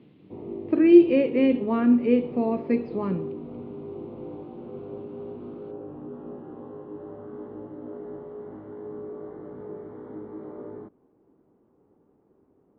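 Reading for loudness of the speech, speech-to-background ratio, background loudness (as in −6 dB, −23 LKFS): −21.5 LKFS, 17.0 dB, −38.5 LKFS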